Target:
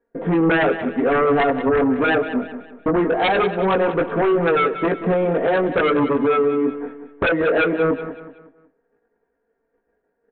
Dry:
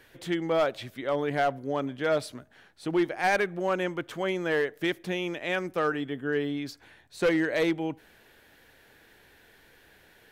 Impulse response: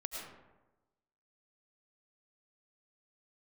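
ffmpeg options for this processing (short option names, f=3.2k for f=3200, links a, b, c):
-filter_complex "[0:a]lowpass=f=1.6k:w=0.5412,lowpass=f=1.6k:w=1.3066,agate=range=-35dB:threshold=-55dB:ratio=16:detection=peak,equalizer=f=420:t=o:w=1.8:g=12.5,aecho=1:1:4.3:0.76,acompressor=threshold=-27dB:ratio=2,flanger=delay=18:depth=5.6:speed=0.21,aresample=8000,aeval=exprs='0.188*sin(PI/2*3.55*val(0)/0.188)':c=same,aresample=44100,aecho=1:1:186|372|558|744:0.266|0.104|0.0405|0.0158,asplit=2[a][b];[1:a]atrim=start_sample=2205[c];[b][c]afir=irnorm=-1:irlink=0,volume=-20.5dB[d];[a][d]amix=inputs=2:normalize=0"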